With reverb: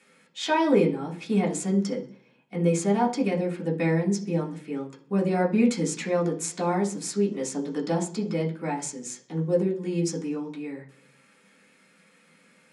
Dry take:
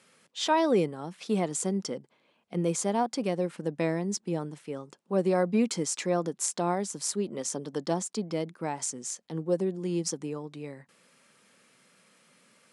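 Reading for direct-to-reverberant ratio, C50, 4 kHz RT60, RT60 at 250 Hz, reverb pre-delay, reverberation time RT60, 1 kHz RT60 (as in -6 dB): -4.5 dB, 12.0 dB, 0.55 s, 0.75 s, 3 ms, 0.50 s, 0.40 s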